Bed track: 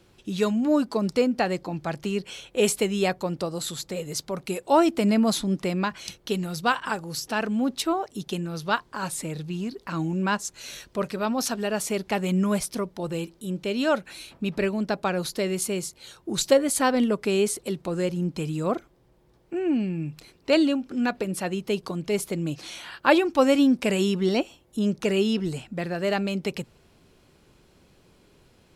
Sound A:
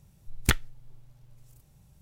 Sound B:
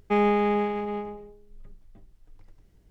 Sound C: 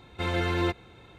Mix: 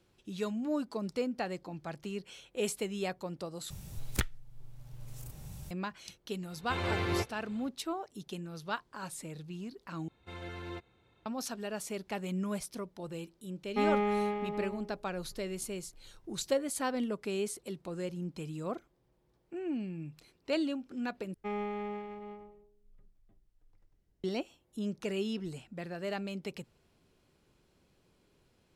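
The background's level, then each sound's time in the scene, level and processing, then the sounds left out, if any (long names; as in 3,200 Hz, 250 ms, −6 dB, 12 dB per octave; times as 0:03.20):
bed track −11.5 dB
0:03.70: overwrite with A −1.5 dB + multiband upward and downward compressor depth 70%
0:06.51: mix in C −6.5 dB + delay with pitch and tempo change per echo 87 ms, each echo +2 semitones, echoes 2, each echo −6 dB
0:10.08: overwrite with C −16 dB
0:13.66: mix in B −7 dB
0:21.34: overwrite with B −14.5 dB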